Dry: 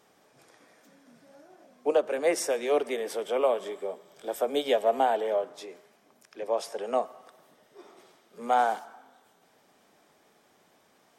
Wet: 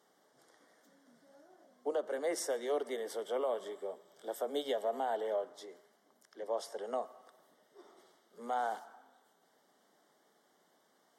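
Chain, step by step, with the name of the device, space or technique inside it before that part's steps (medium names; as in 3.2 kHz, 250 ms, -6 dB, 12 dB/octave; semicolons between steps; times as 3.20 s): PA system with an anti-feedback notch (high-pass 190 Hz 12 dB/octave; Butterworth band-stop 2.5 kHz, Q 3.3; peak limiter -18.5 dBFS, peak gain reduction 5.5 dB); trim -7 dB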